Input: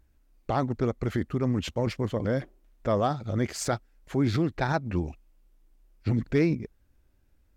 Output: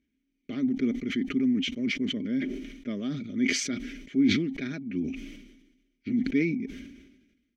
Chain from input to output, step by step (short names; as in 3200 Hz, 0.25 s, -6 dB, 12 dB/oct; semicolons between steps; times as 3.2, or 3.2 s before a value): vowel filter i; bell 6000 Hz +11.5 dB 0.2 oct; comb 4.9 ms, depth 45%; sustainer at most 51 dB/s; gain +7.5 dB